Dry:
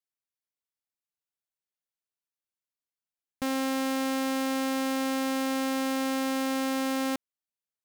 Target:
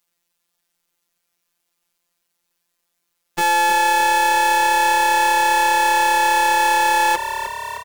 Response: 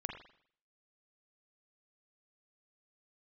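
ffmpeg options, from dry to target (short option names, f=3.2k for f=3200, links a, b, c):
-filter_complex "[0:a]acrossover=split=290|1700[a][b][c];[a]acompressor=threshold=-46dB:ratio=4[d];[b]acompressor=threshold=-33dB:ratio=4[e];[c]acompressor=threshold=-43dB:ratio=4[f];[d][e][f]amix=inputs=3:normalize=0,asetrate=72056,aresample=44100,atempo=0.612027,asplit=2[g][h];[h]asoftclip=type=tanh:threshold=-35dB,volume=-4.5dB[i];[g][i]amix=inputs=2:normalize=0,afftfilt=real='hypot(re,im)*cos(PI*b)':imag='0':win_size=1024:overlap=0.75,asplit=2[j][k];[k]asplit=8[l][m][n][o][p][q][r][s];[l]adelay=307,afreqshift=35,volume=-12dB[t];[m]adelay=614,afreqshift=70,volume=-15.9dB[u];[n]adelay=921,afreqshift=105,volume=-19.8dB[v];[o]adelay=1228,afreqshift=140,volume=-23.6dB[w];[p]adelay=1535,afreqshift=175,volume=-27.5dB[x];[q]adelay=1842,afreqshift=210,volume=-31.4dB[y];[r]adelay=2149,afreqshift=245,volume=-35.3dB[z];[s]adelay=2456,afreqshift=280,volume=-39.1dB[aa];[t][u][v][w][x][y][z][aa]amix=inputs=8:normalize=0[ab];[j][ab]amix=inputs=2:normalize=0,alimiter=level_in=23dB:limit=-1dB:release=50:level=0:latency=1,volume=-1dB"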